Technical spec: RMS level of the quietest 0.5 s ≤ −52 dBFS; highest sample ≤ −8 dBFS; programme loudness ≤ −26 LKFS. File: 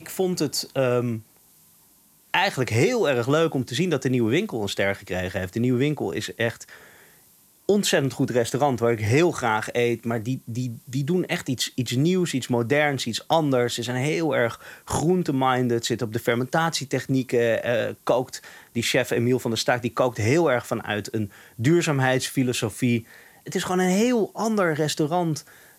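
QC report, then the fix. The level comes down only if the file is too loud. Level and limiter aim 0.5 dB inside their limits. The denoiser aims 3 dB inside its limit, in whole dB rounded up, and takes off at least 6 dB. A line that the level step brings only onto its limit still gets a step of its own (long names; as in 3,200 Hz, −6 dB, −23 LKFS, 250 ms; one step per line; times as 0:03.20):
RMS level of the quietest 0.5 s −57 dBFS: in spec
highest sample −5.5 dBFS: out of spec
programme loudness −23.5 LKFS: out of spec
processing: level −3 dB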